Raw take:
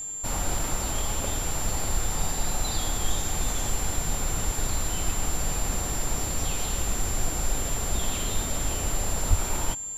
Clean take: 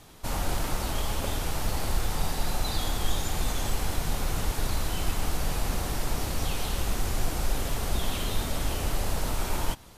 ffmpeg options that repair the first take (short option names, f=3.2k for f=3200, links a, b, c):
-filter_complex "[0:a]bandreject=f=7.3k:w=30,asplit=3[a][b][c];[a]afade=t=out:st=9.29:d=0.02[d];[b]highpass=f=140:w=0.5412,highpass=f=140:w=1.3066,afade=t=in:st=9.29:d=0.02,afade=t=out:st=9.41:d=0.02[e];[c]afade=t=in:st=9.41:d=0.02[f];[d][e][f]amix=inputs=3:normalize=0"